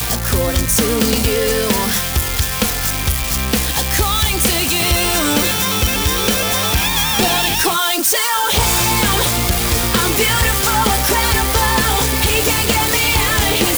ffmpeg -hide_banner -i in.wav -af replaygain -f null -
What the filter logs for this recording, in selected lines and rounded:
track_gain = -1.9 dB
track_peak = 0.418